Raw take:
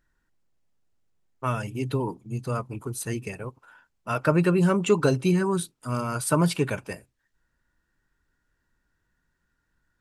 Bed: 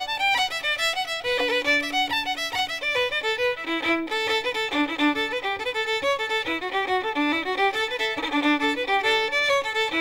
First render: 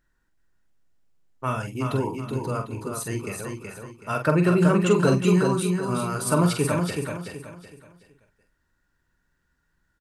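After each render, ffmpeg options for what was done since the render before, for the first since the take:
-filter_complex "[0:a]asplit=2[s0][s1];[s1]adelay=45,volume=0.473[s2];[s0][s2]amix=inputs=2:normalize=0,aecho=1:1:375|750|1125|1500:0.562|0.186|0.0612|0.0202"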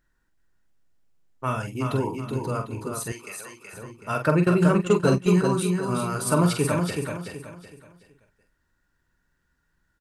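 -filter_complex "[0:a]asettb=1/sr,asplit=3[s0][s1][s2];[s0]atrim=end=3.124[s3];[s1]atrim=start=3.12:end=3.73,asetpts=PTS-STARTPTS,afade=t=in:d=0.004:c=qsin,afade=t=out:st=0.606:d=0.004:c=qsin,highpass=f=1400:p=1[s4];[s2]atrim=start=3.726[s5];[s3][s4]acrossfade=d=0.004:c1=hsin:c2=qsin[s6];[s6][s5]acrossfade=d=0.004:c1=qsin:c2=hsin,asplit=3[s7][s8][s9];[s7]afade=t=out:st=4.42:d=0.02[s10];[s8]agate=range=0.2:threshold=0.0891:ratio=16:release=100:detection=peak,afade=t=in:st=4.42:d=0.02,afade=t=out:st=5.43:d=0.02[s11];[s9]afade=t=in:st=5.43:d=0.02[s12];[s10][s11][s12]amix=inputs=3:normalize=0"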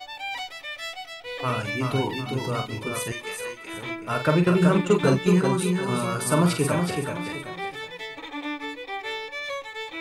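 -filter_complex "[1:a]volume=0.299[s0];[0:a][s0]amix=inputs=2:normalize=0"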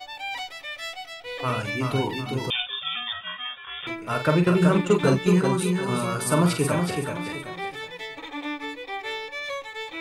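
-filter_complex "[0:a]asettb=1/sr,asplit=3[s0][s1][s2];[s0]atrim=end=2.504[s3];[s1]atrim=start=2.5:end=3.87,asetpts=PTS-STARTPTS,afade=t=in:d=0.004:c=qsin,afade=t=out:st=1.366:d=0.004:c=qsin,lowpass=f=3100:t=q:w=0.5098,lowpass=f=3100:t=q:w=0.6013,lowpass=f=3100:t=q:w=0.9,lowpass=f=3100:t=q:w=2.563,afreqshift=-3700[s4];[s2]atrim=start=3.866[s5];[s3][s4]acrossfade=d=0.004:c1=hsin:c2=qsin[s6];[s6][s5]acrossfade=d=0.004:c1=qsin:c2=hsin"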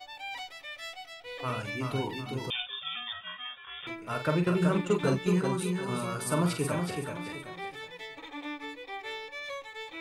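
-af "volume=0.447"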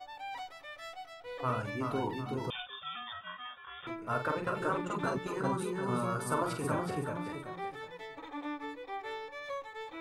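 -af "afftfilt=real='re*lt(hypot(re,im),0.251)':imag='im*lt(hypot(re,im),0.251)':win_size=1024:overlap=0.75,highshelf=f=1800:t=q:w=1.5:g=-7"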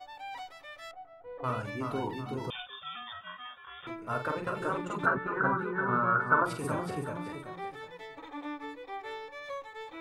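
-filter_complex "[0:a]asettb=1/sr,asplit=3[s0][s1][s2];[s0]atrim=end=0.914[s3];[s1]atrim=start=0.91:end=1.44,asetpts=PTS-STARTPTS,afade=t=in:d=0.004:c=qsin,afade=t=out:st=0.526:d=0.004:c=qsin,lowpass=1000[s4];[s2]atrim=start=1.436[s5];[s3][s4]acrossfade=d=0.004:c1=hsin:c2=qsin[s6];[s6][s5]acrossfade=d=0.004:c1=qsin:c2=hsin,asplit=3[s7][s8][s9];[s7]afade=t=out:st=5.05:d=0.02[s10];[s8]lowpass=f=1500:t=q:w=6,afade=t=in:st=5.05:d=0.02,afade=t=out:st=6.44:d=0.02[s11];[s9]afade=t=in:st=6.44:d=0.02[s12];[s10][s11][s12]amix=inputs=3:normalize=0"

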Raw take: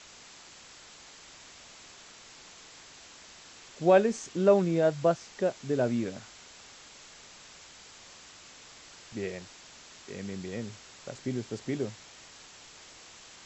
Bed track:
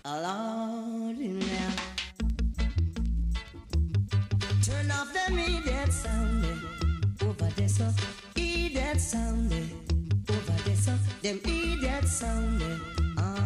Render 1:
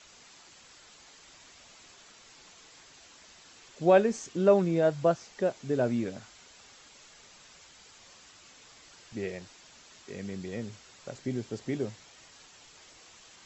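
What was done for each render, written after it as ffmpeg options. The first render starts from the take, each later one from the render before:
-af "afftdn=nr=6:nf=-52"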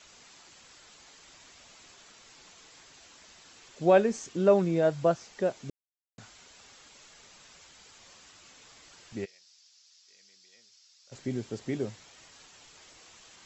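-filter_complex "[0:a]asplit=3[s0][s1][s2];[s0]afade=t=out:st=9.24:d=0.02[s3];[s1]bandpass=f=5100:t=q:w=3.2,afade=t=in:st=9.24:d=0.02,afade=t=out:st=11.11:d=0.02[s4];[s2]afade=t=in:st=11.11:d=0.02[s5];[s3][s4][s5]amix=inputs=3:normalize=0,asplit=3[s6][s7][s8];[s6]atrim=end=5.7,asetpts=PTS-STARTPTS,afade=t=out:st=5.696:d=0.004:c=hsin[s9];[s7]atrim=start=5.7:end=6.18,asetpts=PTS-STARTPTS,volume=0[s10];[s8]atrim=start=6.18,asetpts=PTS-STARTPTS,afade=t=in:d=0.004:c=hsin[s11];[s9][s10][s11]concat=n=3:v=0:a=1"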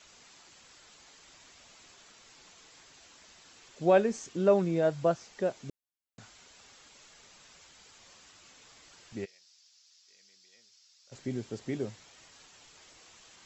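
-af "volume=0.794"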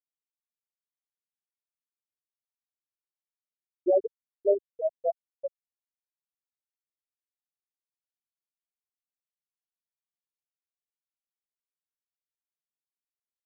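-af "afftfilt=real='re*gte(hypot(re,im),0.501)':imag='im*gte(hypot(re,im),0.501)':win_size=1024:overlap=0.75,lowshelf=f=200:g=10.5"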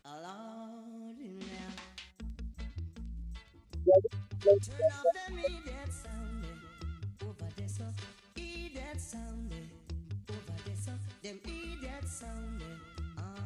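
-filter_complex "[1:a]volume=0.2[s0];[0:a][s0]amix=inputs=2:normalize=0"

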